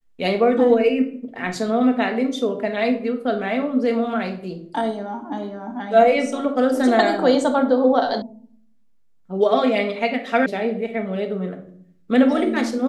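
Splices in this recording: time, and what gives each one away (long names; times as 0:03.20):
0:08.22: cut off before it has died away
0:10.46: cut off before it has died away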